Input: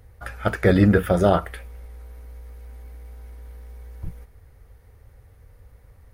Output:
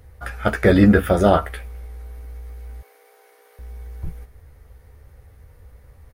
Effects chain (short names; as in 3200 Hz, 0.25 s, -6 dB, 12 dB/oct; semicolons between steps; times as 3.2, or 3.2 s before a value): 2.81–3.59 steep high-pass 390 Hz 36 dB/oct; doubler 14 ms -7 dB; gain +2.5 dB